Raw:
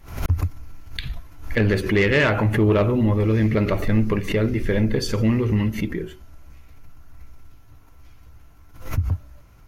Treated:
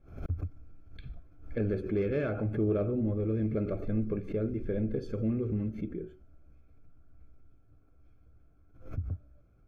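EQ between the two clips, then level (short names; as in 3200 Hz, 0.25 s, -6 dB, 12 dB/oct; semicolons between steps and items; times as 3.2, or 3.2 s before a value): running mean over 46 samples; low shelf 300 Hz -10.5 dB; -3.0 dB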